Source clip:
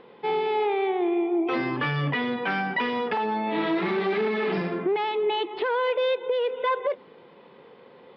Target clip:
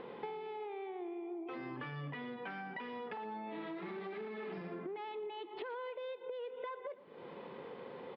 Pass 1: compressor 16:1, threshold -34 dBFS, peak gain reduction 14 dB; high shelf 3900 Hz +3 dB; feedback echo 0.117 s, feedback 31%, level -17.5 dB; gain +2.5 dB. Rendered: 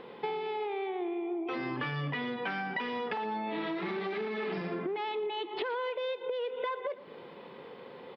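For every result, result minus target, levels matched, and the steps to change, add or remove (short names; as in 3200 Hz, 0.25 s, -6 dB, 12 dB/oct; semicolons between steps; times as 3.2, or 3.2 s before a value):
compressor: peak gain reduction -8.5 dB; 4000 Hz band +3.5 dB
change: compressor 16:1, threshold -43 dBFS, peak gain reduction 22 dB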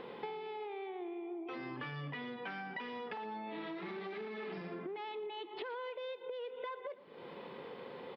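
4000 Hz band +4.0 dB
change: high shelf 3900 Hz -8.5 dB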